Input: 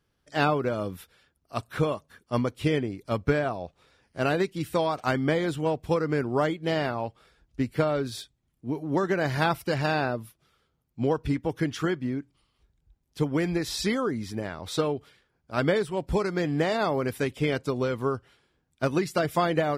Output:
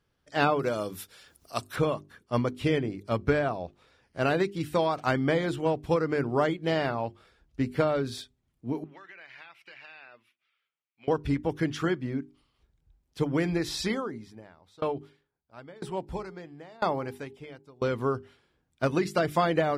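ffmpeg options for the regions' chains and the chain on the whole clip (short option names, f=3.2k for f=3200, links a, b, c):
-filter_complex "[0:a]asettb=1/sr,asplit=3[a][b][c];[a]atrim=end=0.594[d];[b]atrim=start=0.59:end=1.76,asetpts=PTS-STARTPTS,afade=t=in:d=0.004:c=qsin,afade=t=out:st=1.166:d=0.004:c=qsin,bass=f=250:g=-5,treble=f=4k:g=12,acompressor=mode=upward:threshold=-42dB:ratio=2.5:attack=3.2:release=140:knee=2.83:detection=peak[e];[c]atrim=start=1.756[f];[d][e]acrossfade=d=0.004:c1=hsin:c2=qsin[g];[g][f]acrossfade=d=0.004:c1=qsin:c2=hsin,asettb=1/sr,asplit=3[h][i][j];[h]atrim=end=8.844[k];[i]atrim=start=8.84:end=11.08,asetpts=PTS-STARTPTS,afade=t=in:d=0.004:c=qsin,afade=t=out:st=2.236:d=0.004:c=qsin,bandpass=f=2.4k:t=q:w=3.1,acompressor=threshold=-44dB:ratio=6:attack=3.2:release=140:knee=1:detection=peak[l];[j]atrim=start=11.076[m];[k][l]acrossfade=d=0.004:c1=hsin:c2=qsin[n];[n][m]acrossfade=d=0.004:c1=qsin:c2=hsin,asettb=1/sr,asplit=3[o][p][q];[o]atrim=end=13.824[r];[p]atrim=start=13.82:end=17.82,asetpts=PTS-STARTPTS,afade=t=in:d=0.004:c=qsin,afade=t=out:st=3.996:d=0.004:c=qsin,equalizer=f=870:t=o:w=0.5:g=4.5,bandreject=f=411:t=h:w=4,bandreject=f=822:t=h:w=4,aeval=exprs='val(0)*pow(10,-27*if(lt(mod(1*n/s,1),2*abs(1)/1000),1-mod(1*n/s,1)/(2*abs(1)/1000),(mod(1*n/s,1)-2*abs(1)/1000)/(1-2*abs(1)/1000))/20)':c=same[s];[q]atrim=start=17.816[t];[r][s]acrossfade=d=0.004:c1=hsin:c2=qsin[u];[u][t]acrossfade=d=0.004:c1=qsin:c2=hsin,highshelf=f=7.6k:g=-6.5,bandreject=f=50:t=h:w=6,bandreject=f=100:t=h:w=6,bandreject=f=150:t=h:w=6,bandreject=f=200:t=h:w=6,bandreject=f=250:t=h:w=6,bandreject=f=300:t=h:w=6,bandreject=f=350:t=h:w=6,bandreject=f=400:t=h:w=6"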